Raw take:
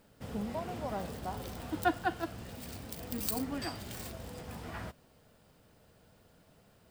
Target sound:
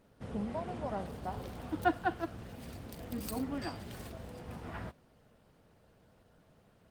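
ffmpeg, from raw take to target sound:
ffmpeg -i in.wav -af "aemphasis=mode=reproduction:type=cd" -ar 48000 -c:a libopus -b:a 24k out.opus

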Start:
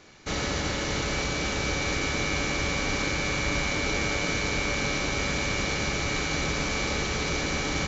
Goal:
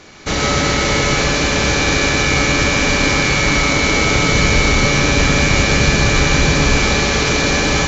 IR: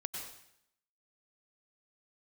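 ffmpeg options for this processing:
-filter_complex "[0:a]asettb=1/sr,asplit=3[link_01][link_02][link_03];[link_01]atrim=end=4.114[link_04];[link_02]atrim=start=4.11:end=6.78,asetpts=PTS-STARTPTS,afade=type=in:duration=0.004:curve=qsin,afade=type=out:start_time=2.666:duration=0.004:curve=qsin,lowshelf=frequency=160:gain=7[link_05];[link_03]atrim=start=6.776[link_06];[link_04][link_05]acrossfade=duration=0.004:curve1=hsin:curve2=qsin[link_07];[link_07][link_06]acrossfade=duration=0.004:curve1=qsin:curve2=hsin,acontrast=63[link_08];[1:a]atrim=start_sample=2205,afade=type=out:start_time=0.19:duration=0.01,atrim=end_sample=8820,asetrate=34398,aresample=44100[link_09];[link_08][link_09]afir=irnorm=-1:irlink=0,volume=6dB"

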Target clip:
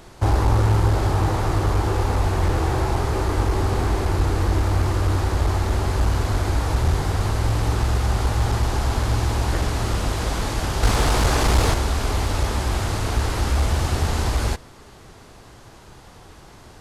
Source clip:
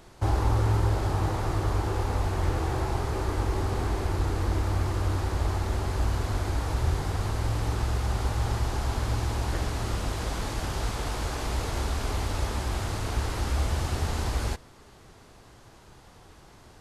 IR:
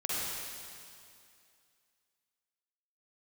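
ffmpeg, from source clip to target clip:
-filter_complex "[0:a]asettb=1/sr,asplit=3[link_01][link_02][link_03];[link_01]atrim=end=10.834[link_04];[link_02]atrim=start=10.83:end=11.74,asetpts=PTS-STARTPTS,afade=type=in:duration=0.004:curve=qsin,afade=type=out:start_time=0.906:duration=0.004:curve=qsin,acontrast=53[link_05];[link_03]atrim=start=11.736[link_06];[link_04][link_05]acrossfade=duration=0.004:curve1=hsin:curve2=qsin[link_07];[link_07][link_06]acrossfade=duration=0.004:curve1=qsin:curve2=hsin,aeval=exprs='clip(val(0),-1,0.0841)':channel_layout=same,volume=7dB"

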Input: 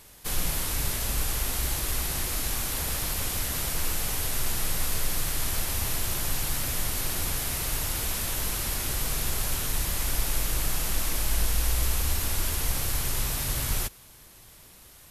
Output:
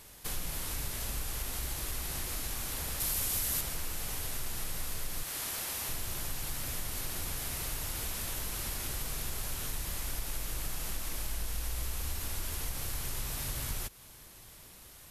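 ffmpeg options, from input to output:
ffmpeg -i in.wav -filter_complex "[0:a]asettb=1/sr,asplit=3[link_01][link_02][link_03];[link_01]atrim=end=5.234[link_04];[link_02]atrim=start=5.23:end=5.89,asetpts=PTS-STARTPTS,afade=type=in:duration=0.004:curve=qsin,afade=type=out:start_time=0.656:duration=0.004:curve=qsin,highpass=frequency=370:poles=1[link_05];[link_03]atrim=start=5.886[link_06];[link_04][link_05]acrossfade=duration=0.004:curve1=hsin:curve2=qsin[link_07];[link_07][link_06]acrossfade=duration=0.004:curve1=qsin:curve2=hsin,acompressor=threshold=-34dB:ratio=2.5,asettb=1/sr,asplit=3[link_08][link_09][link_10];[link_08]atrim=end=3.004[link_11];[link_09]atrim=start=3:end=3.61,asetpts=PTS-STARTPTS,afade=type=in:duration=0.004:curve=qsin,afade=type=out:start_time=0.606:duration=0.004:curve=qsin,highshelf=frequency=5400:gain=8.5[link_12];[link_10]atrim=start=3.606[link_13];[link_11][link_12]acrossfade=duration=0.004:curve1=hsin:curve2=qsin[link_14];[link_14][link_13]acrossfade=duration=0.004:curve1=qsin:curve2=hsin,volume=-1.5dB" out.wav

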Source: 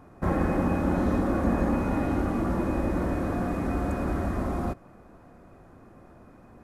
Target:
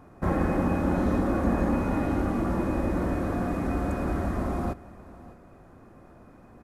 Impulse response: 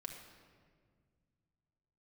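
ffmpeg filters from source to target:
-af "aecho=1:1:607:0.106"

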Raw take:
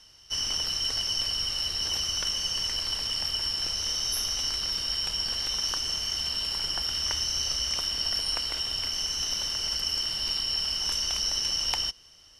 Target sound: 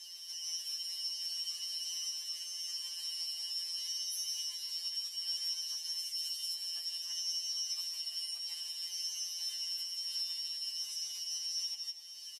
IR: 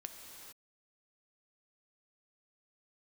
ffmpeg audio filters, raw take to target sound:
-filter_complex "[0:a]acompressor=threshold=-39dB:ratio=10,asettb=1/sr,asplit=3[link_01][link_02][link_03];[link_01]atrim=end=5.994[link_04];[link_02]atrim=start=5.99:end=6.54,asetpts=PTS-STARTPTS,afade=type=in:duration=0.004:curve=qsin,afade=type=out:start_time=0.546:duration=0.004:curve=qsin,highshelf=frequency=4500:gain=9.5[link_05];[link_03]atrim=start=6.536[link_06];[link_04][link_05]acrossfade=duration=0.004:curve1=hsin:curve2=qsin[link_07];[link_07][link_06]acrossfade=duration=0.004:curve1=qsin:curve2=hsin,asettb=1/sr,asplit=3[link_08][link_09][link_10];[link_08]atrim=end=7.604[link_11];[link_09]atrim=start=7.6:end=8.36,asetpts=PTS-STARTPTS,afade=type=in:duration=0.004:curve=qsin,afade=type=out:start_time=0.756:duration=0.004:curve=qsin,highpass=frequency=490:width=0.5412,highpass=frequency=490:width=1.3066[link_12];[link_10]atrim=start=8.356[link_13];[link_11][link_12]acrossfade=duration=0.004:curve1=hsin:curve2=qsin[link_14];[link_14][link_13]acrossfade=duration=0.004:curve1=qsin:curve2=hsin,asplit=2[link_15][link_16];[1:a]atrim=start_sample=2205,afade=type=out:start_time=0.35:duration=0.01,atrim=end_sample=15876[link_17];[link_16][link_17]afir=irnorm=-1:irlink=0,volume=1dB[link_18];[link_15][link_18]amix=inputs=2:normalize=0,alimiter=level_in=8dB:limit=-24dB:level=0:latency=1:release=350,volume=-8dB,asuperstop=centerf=1400:order=4:qfactor=4.6,aderivative,aecho=1:1:158:0.251,afftfilt=real='re*2.83*eq(mod(b,8),0)':imag='im*2.83*eq(mod(b,8),0)':win_size=2048:overlap=0.75,volume=8dB"

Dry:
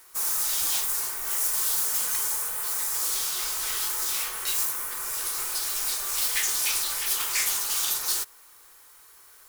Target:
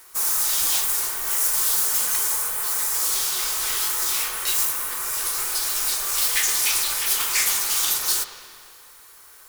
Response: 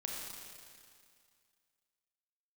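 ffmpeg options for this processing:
-filter_complex "[0:a]asplit=2[link_01][link_02];[link_02]lowpass=3800[link_03];[1:a]atrim=start_sample=2205,adelay=117[link_04];[link_03][link_04]afir=irnorm=-1:irlink=0,volume=-9.5dB[link_05];[link_01][link_05]amix=inputs=2:normalize=0,volume=4.5dB"

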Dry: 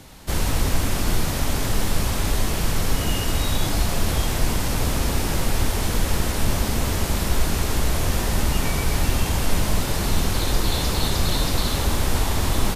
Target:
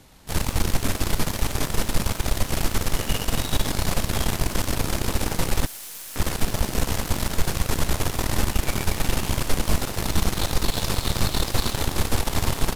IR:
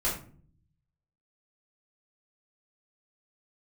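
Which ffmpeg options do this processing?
-filter_complex "[0:a]asettb=1/sr,asplit=3[link_01][link_02][link_03];[link_01]atrim=end=5.664[link_04];[link_02]atrim=start=5.66:end=6.16,asetpts=PTS-STARTPTS,afade=type=in:duration=0.004:curve=qsin,afade=type=out:start_time=0.496:duration=0.004:curve=qsin,aderivative[link_05];[link_03]atrim=start=6.156[link_06];[link_04][link_05]acrossfade=duration=0.004:curve1=hsin:curve2=qsin[link_07];[link_07][link_06]acrossfade=duration=0.004:curve1=qsin:curve2=hsin,aeval=exprs='0.531*(cos(1*acos(clip(val(0)/0.531,-1,1)))-cos(1*PI/2))+0.211*(cos(6*acos(clip(val(0)/0.531,-1,1)))-cos(6*PI/2))':channel_layout=same,volume=-7dB"

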